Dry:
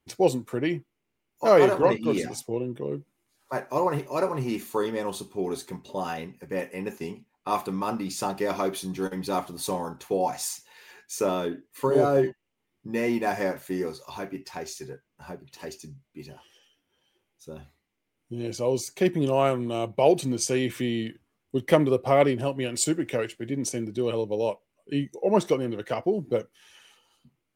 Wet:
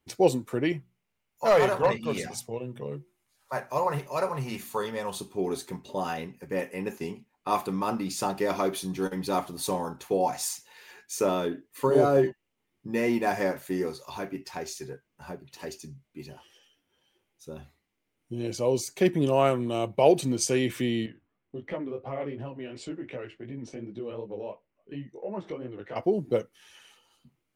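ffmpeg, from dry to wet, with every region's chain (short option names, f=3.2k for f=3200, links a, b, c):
-filter_complex "[0:a]asettb=1/sr,asplit=3[a][b][c];[a]atrim=end=0.724[d];[b]atrim=start=0.72:end=5.21,asetpts=PTS-STARTPTS,afade=t=in:d=0.004:c=qsin,afade=t=out:st=4.486:d=0.004:c=qsin,equalizer=f=320:w=2.1:g=-12.5,asoftclip=type=hard:threshold=-14.5dB,bandreject=f=60:t=h:w=6,bandreject=f=120:t=h:w=6,bandreject=f=180:t=h:w=6,bandreject=f=240:t=h:w=6,bandreject=f=300:t=h:w=6,bandreject=f=360:t=h:w=6[e];[c]atrim=start=5.206[f];[d][e]acrossfade=d=0.004:c1=hsin:c2=qsin[g];[g][f]acrossfade=d=0.004:c1=qsin:c2=hsin,asettb=1/sr,asplit=3[h][i][j];[h]atrim=end=21.064[k];[i]atrim=start=21.06:end=25.96,asetpts=PTS-STARTPTS,afade=t=in:d=0.004:c=qsin,afade=t=out:st=4.896:d=0.004:c=qsin,lowpass=2.5k,acompressor=threshold=-35dB:ratio=2:attack=3.2:release=140:knee=1:detection=peak,flanger=delay=15:depth=6:speed=2.8[l];[j]atrim=start=25.956[m];[k][l]acrossfade=d=0.004:c1=hsin:c2=qsin[n];[n][m]acrossfade=d=0.004:c1=qsin:c2=hsin"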